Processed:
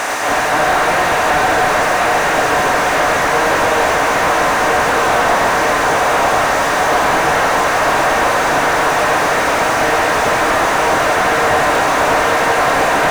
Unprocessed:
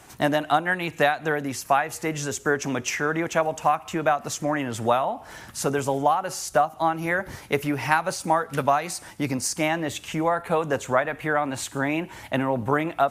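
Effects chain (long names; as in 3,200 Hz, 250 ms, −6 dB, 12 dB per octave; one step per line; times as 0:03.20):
compressor on every frequency bin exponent 0.2
volume swells 119 ms
high-pass filter 1,300 Hz 6 dB per octave
feedback echo with a long and a short gap by turns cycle 1,254 ms, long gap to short 3 to 1, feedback 57%, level −4 dB
reverb whose tail is shaped and stops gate 320 ms rising, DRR −5.5 dB
brickwall limiter −3 dBFS, peak gain reduction 6 dB
slew-rate limiting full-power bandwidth 280 Hz
level +2 dB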